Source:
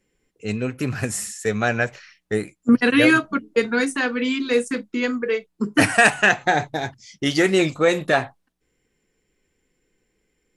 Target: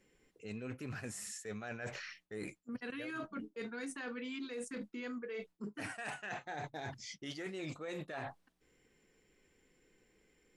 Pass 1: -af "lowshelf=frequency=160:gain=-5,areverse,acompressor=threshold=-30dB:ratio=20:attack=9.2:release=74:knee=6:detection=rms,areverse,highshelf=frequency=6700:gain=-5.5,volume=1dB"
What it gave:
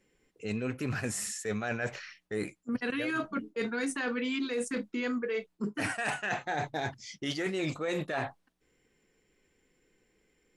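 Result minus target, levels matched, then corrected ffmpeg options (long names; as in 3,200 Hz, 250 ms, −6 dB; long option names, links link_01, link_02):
downward compressor: peak gain reduction −10.5 dB
-af "lowshelf=frequency=160:gain=-5,areverse,acompressor=threshold=-41dB:ratio=20:attack=9.2:release=74:knee=6:detection=rms,areverse,highshelf=frequency=6700:gain=-5.5,volume=1dB"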